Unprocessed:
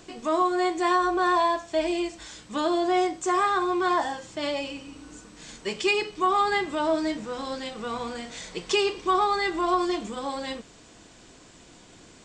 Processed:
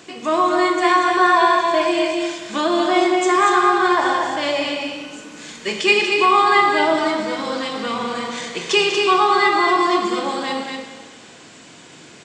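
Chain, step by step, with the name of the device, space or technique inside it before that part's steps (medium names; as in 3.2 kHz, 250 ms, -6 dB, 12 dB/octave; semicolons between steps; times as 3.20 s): stadium PA (high-pass 140 Hz 12 dB/octave; peaking EQ 2.2 kHz +5 dB 1.6 oct; loudspeakers at several distances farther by 67 m -10 dB, 81 m -5 dB; reverberation RT60 1.6 s, pre-delay 27 ms, DRR 4.5 dB); trim +4.5 dB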